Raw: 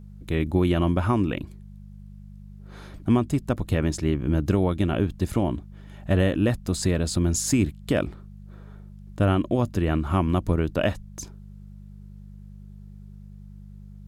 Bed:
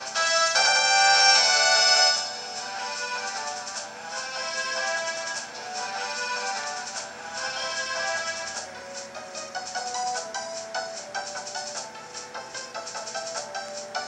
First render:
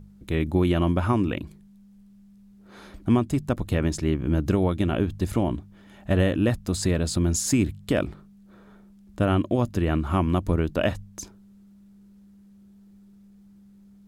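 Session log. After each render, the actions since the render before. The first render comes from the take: de-hum 50 Hz, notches 3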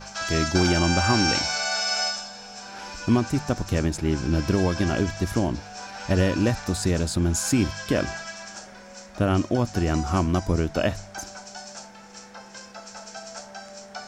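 add bed -6.5 dB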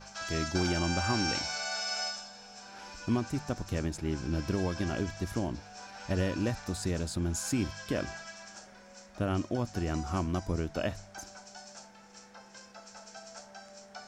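trim -9 dB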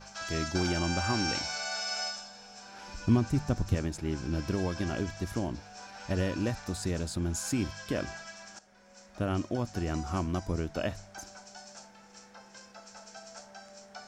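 2.88–3.75 s: bass shelf 200 Hz +10.5 dB; 8.59–9.20 s: fade in, from -12.5 dB

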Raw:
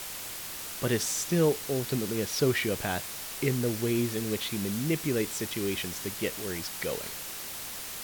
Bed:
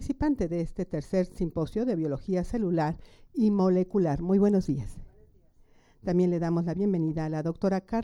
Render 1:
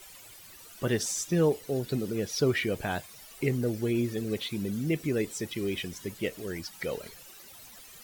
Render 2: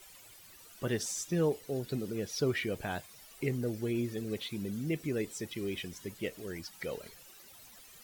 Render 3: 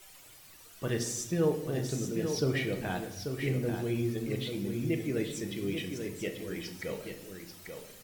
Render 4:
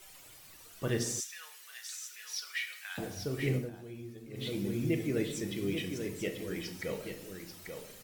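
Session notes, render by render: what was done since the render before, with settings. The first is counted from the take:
noise reduction 15 dB, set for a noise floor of -39 dBFS
trim -5 dB
on a send: delay 838 ms -7 dB; on the sum: simulated room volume 310 m³, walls mixed, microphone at 0.58 m
1.20–2.98 s: high-pass 1.5 kHz 24 dB/octave; 3.55–4.48 s: dip -14 dB, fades 0.15 s

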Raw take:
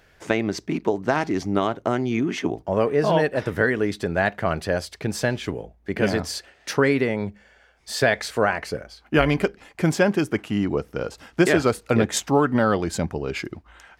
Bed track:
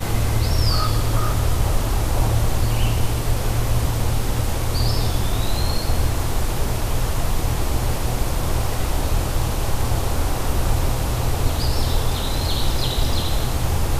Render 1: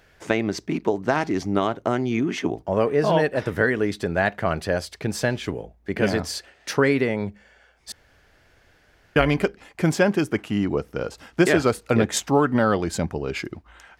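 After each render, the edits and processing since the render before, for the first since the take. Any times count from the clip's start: 7.92–9.16 s: room tone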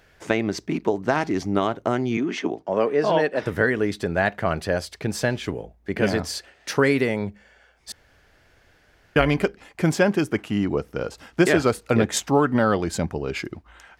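2.17–3.43 s: three-band isolator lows -17 dB, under 180 Hz, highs -14 dB, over 8 kHz; 6.75–7.18 s: treble shelf 7.7 kHz -> 5.3 kHz +10.5 dB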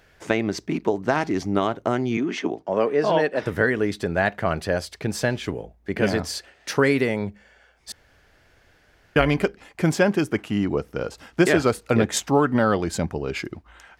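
no audible change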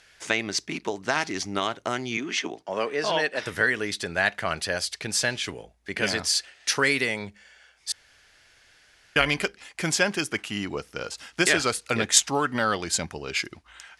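elliptic low-pass 11 kHz, stop band 60 dB; tilt shelf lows -9 dB, about 1.3 kHz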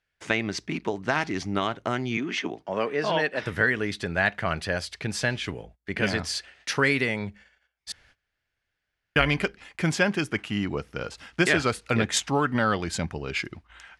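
gate -51 dBFS, range -23 dB; tone controls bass +7 dB, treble -10 dB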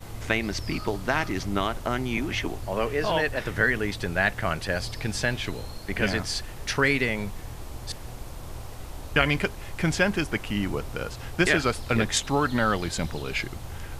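add bed track -17 dB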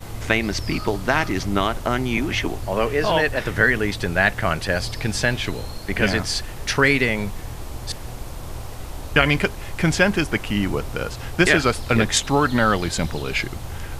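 trim +5.5 dB; peak limiter -1 dBFS, peak gain reduction 1.5 dB

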